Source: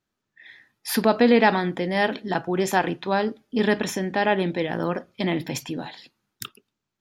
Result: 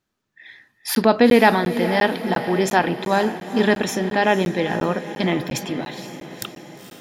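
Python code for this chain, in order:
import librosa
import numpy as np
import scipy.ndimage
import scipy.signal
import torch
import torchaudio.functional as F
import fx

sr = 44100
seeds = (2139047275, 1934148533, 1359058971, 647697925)

p1 = x + fx.echo_diffused(x, sr, ms=478, feedback_pct=58, wet_db=-11.5, dry=0)
p2 = fx.buffer_crackle(p1, sr, first_s=0.95, period_s=0.35, block=512, kind='zero')
y = F.gain(torch.from_numpy(p2), 3.5).numpy()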